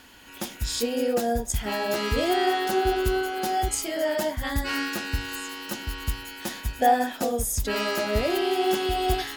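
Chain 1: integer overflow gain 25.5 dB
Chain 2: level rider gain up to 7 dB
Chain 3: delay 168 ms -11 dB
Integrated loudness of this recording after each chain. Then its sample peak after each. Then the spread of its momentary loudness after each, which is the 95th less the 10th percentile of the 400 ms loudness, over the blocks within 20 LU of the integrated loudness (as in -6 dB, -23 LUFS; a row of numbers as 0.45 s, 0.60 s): -29.0 LUFS, -19.5 LUFS, -26.0 LUFS; -25.5 dBFS, -3.0 dBFS, -8.5 dBFS; 6 LU, 10 LU, 10 LU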